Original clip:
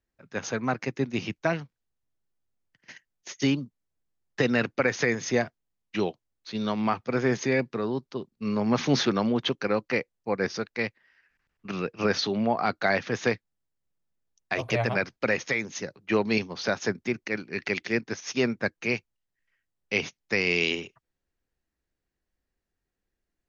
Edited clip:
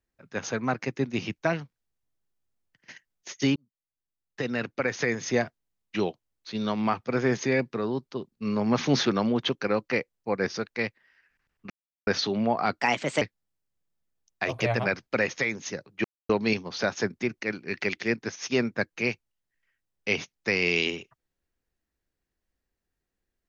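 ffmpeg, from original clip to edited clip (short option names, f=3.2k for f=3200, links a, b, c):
-filter_complex "[0:a]asplit=7[a][b][c][d][e][f][g];[a]atrim=end=3.56,asetpts=PTS-STARTPTS,afade=t=out:st=3.556:d=0.004:c=hsin[h];[b]atrim=start=3.56:end=11.7,asetpts=PTS-STARTPTS,afade=t=in:d=1.86,afade=t=out:st=8.136:d=0.004:c=hsin[i];[c]atrim=start=11.7:end=12.07,asetpts=PTS-STARTPTS,volume=0[j];[d]atrim=start=12.07:end=12.814,asetpts=PTS-STARTPTS,afade=t=in:d=0.004:c=hsin[k];[e]atrim=start=12.81:end=13.31,asetpts=PTS-STARTPTS,asetrate=54684,aresample=44100,atrim=end_sample=17782,asetpts=PTS-STARTPTS[l];[f]atrim=start=13.306:end=16.14,asetpts=PTS-STARTPTS,afade=t=out:st=2.83:d=0.004:c=hsin,apad=pad_dur=0.25[m];[g]atrim=start=16.14,asetpts=PTS-STARTPTS,afade=t=in:d=0.004:c=hsin[n];[h][i][j][k]concat=n=4:v=0:a=1[o];[o][l]acrossfade=d=0.004:c1=hsin:c2=hsin[p];[m][n]concat=n=2:v=0:a=1[q];[p][q]acrossfade=d=0.004:c1=hsin:c2=hsin"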